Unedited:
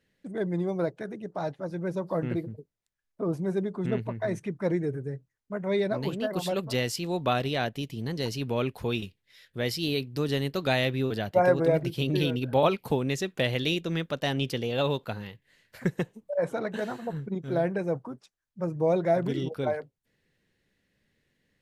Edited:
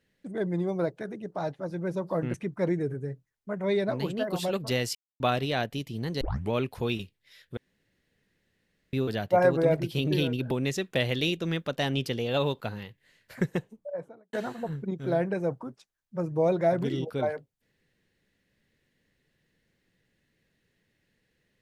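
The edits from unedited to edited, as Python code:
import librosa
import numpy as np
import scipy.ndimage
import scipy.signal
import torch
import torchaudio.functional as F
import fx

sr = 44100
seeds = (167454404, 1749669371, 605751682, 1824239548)

y = fx.studio_fade_out(x, sr, start_s=15.92, length_s=0.85)
y = fx.edit(y, sr, fx.cut(start_s=2.34, length_s=2.03),
    fx.silence(start_s=6.98, length_s=0.25),
    fx.tape_start(start_s=8.24, length_s=0.3),
    fx.room_tone_fill(start_s=9.6, length_s=1.36),
    fx.cut(start_s=12.54, length_s=0.41), tone=tone)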